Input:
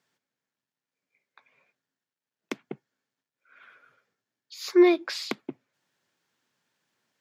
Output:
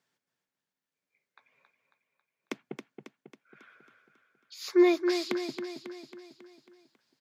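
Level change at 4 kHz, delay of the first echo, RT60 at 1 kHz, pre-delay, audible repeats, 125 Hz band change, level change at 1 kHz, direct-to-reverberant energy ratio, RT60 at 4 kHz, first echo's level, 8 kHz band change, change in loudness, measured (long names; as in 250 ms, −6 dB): −2.5 dB, 273 ms, no reverb audible, no reverb audible, 6, can't be measured, −2.5 dB, no reverb audible, no reverb audible, −7.5 dB, −2.5 dB, −5.0 dB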